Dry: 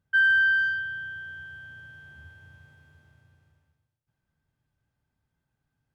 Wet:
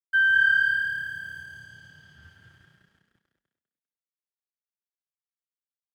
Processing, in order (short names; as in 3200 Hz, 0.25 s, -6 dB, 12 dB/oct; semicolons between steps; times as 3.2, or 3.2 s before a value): 1.42–2.23 high shelf 3300 Hz -11.5 dB; crossover distortion -53.5 dBFS; on a send: frequency-shifting echo 0.199 s, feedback 31%, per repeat +36 Hz, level -4.5 dB